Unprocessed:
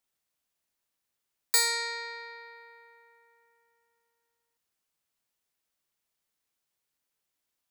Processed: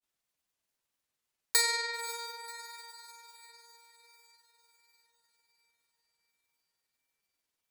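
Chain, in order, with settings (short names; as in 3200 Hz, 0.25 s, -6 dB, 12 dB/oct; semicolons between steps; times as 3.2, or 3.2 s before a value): diffused feedback echo 0.539 s, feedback 53%, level -13 dB; grains 0.1 s, grains 20/s, spray 12 ms, pitch spread up and down by 0 st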